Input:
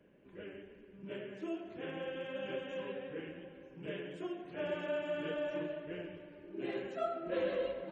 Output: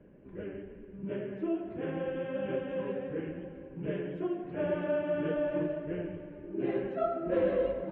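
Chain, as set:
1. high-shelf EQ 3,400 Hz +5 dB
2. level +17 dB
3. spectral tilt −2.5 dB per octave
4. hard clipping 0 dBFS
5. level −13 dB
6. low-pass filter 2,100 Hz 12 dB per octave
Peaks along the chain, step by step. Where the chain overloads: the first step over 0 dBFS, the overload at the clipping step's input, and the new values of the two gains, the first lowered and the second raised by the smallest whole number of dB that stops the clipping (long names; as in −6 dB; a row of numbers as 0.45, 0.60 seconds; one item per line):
−23.5, −6.5, −3.5, −3.5, −16.5, −16.5 dBFS
no step passes full scale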